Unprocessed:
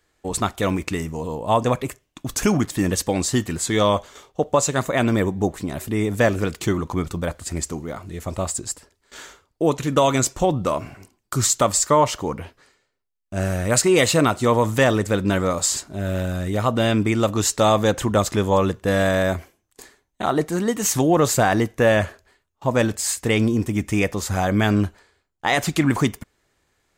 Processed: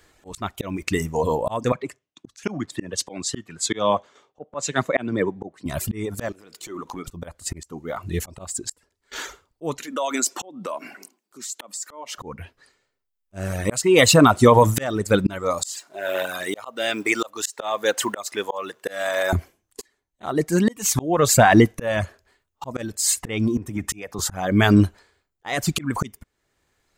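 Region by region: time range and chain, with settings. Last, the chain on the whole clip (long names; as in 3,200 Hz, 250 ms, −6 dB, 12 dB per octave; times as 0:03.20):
0:01.72–0:05.66: band-pass filter 150–6,700 Hz + multiband upward and downward expander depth 70%
0:06.32–0:07.08: high-pass filter 240 Hz + downward compressor 10 to 1, threshold −33 dBFS + transient designer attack −11 dB, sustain −1 dB
0:09.79–0:12.18: Butterworth high-pass 210 Hz + downward compressor 3 to 1, threshold −30 dBFS
0:15.69–0:19.33: mu-law and A-law mismatch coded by mu + high-pass filter 550 Hz
0:23.57–0:24.19: downward compressor, threshold −23 dBFS + multiband upward and downward expander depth 100%
whole clip: reverb reduction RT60 1.5 s; volume swells 644 ms; boost into a limiter +13 dB; level −2.5 dB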